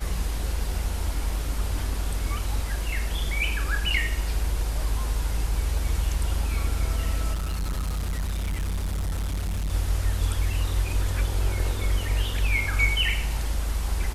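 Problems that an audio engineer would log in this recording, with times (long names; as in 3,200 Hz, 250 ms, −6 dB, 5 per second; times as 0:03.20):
0:07.33–0:09.73: clipping −24.5 dBFS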